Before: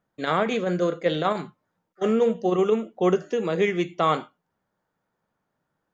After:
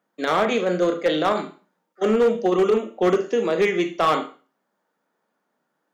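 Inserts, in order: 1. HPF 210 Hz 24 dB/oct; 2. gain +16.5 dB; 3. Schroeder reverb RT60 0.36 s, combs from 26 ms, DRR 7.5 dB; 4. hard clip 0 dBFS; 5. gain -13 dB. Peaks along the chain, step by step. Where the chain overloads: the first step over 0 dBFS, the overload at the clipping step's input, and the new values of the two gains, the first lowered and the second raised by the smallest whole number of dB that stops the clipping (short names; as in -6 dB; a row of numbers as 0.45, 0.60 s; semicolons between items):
-9.5, +7.0, +7.5, 0.0, -13.0 dBFS; step 2, 7.5 dB; step 2 +8.5 dB, step 5 -5 dB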